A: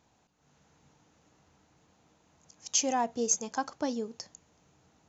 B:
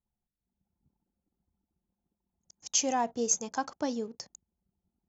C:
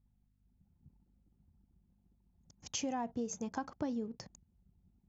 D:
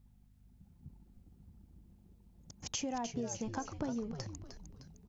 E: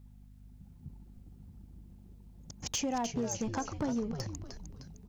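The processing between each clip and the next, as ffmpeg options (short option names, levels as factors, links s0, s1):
-af "anlmdn=0.000631"
-af "bass=f=250:g=12,treble=f=4000:g=-11,acompressor=threshold=0.0141:ratio=4,aeval=exprs='val(0)+0.0002*(sin(2*PI*50*n/s)+sin(2*PI*2*50*n/s)/2+sin(2*PI*3*50*n/s)/3+sin(2*PI*4*50*n/s)/4+sin(2*PI*5*50*n/s)/5)':c=same,volume=1.12"
-filter_complex "[0:a]acompressor=threshold=0.00224:ratio=2,asplit=6[s0][s1][s2][s3][s4][s5];[s1]adelay=306,afreqshift=-130,volume=0.376[s6];[s2]adelay=612,afreqshift=-260,volume=0.176[s7];[s3]adelay=918,afreqshift=-390,volume=0.0832[s8];[s4]adelay=1224,afreqshift=-520,volume=0.0389[s9];[s5]adelay=1530,afreqshift=-650,volume=0.0184[s10];[s0][s6][s7][s8][s9][s10]amix=inputs=6:normalize=0,volume=2.99"
-af "aeval=exprs='val(0)+0.000562*(sin(2*PI*50*n/s)+sin(2*PI*2*50*n/s)/2+sin(2*PI*3*50*n/s)/3+sin(2*PI*4*50*n/s)/4+sin(2*PI*5*50*n/s)/5)':c=same,volume=39.8,asoftclip=hard,volume=0.0251,volume=1.78"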